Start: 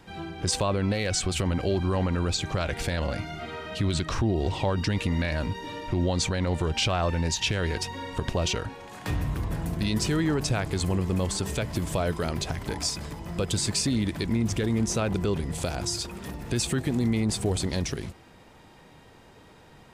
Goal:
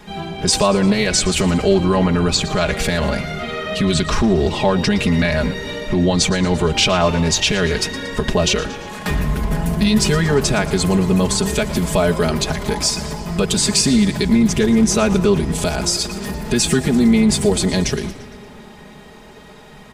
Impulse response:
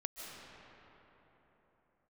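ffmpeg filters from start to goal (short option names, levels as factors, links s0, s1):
-filter_complex "[0:a]aecho=1:1:4.8:0.93,asplit=6[s0][s1][s2][s3][s4][s5];[s1]adelay=115,afreqshift=-67,volume=0.158[s6];[s2]adelay=230,afreqshift=-134,volume=0.0902[s7];[s3]adelay=345,afreqshift=-201,volume=0.0513[s8];[s4]adelay=460,afreqshift=-268,volume=0.0295[s9];[s5]adelay=575,afreqshift=-335,volume=0.0168[s10];[s0][s6][s7][s8][s9][s10]amix=inputs=6:normalize=0,asplit=2[s11][s12];[1:a]atrim=start_sample=2205[s13];[s12][s13]afir=irnorm=-1:irlink=0,volume=0.15[s14];[s11][s14]amix=inputs=2:normalize=0,volume=2.37"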